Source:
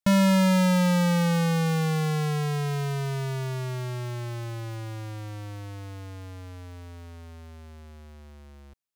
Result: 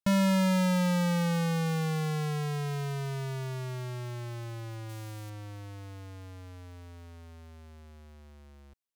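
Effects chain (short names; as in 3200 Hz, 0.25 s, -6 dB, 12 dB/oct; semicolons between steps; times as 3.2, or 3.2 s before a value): 4.89–5.3 high shelf 6000 Hz +10.5 dB; gain -5 dB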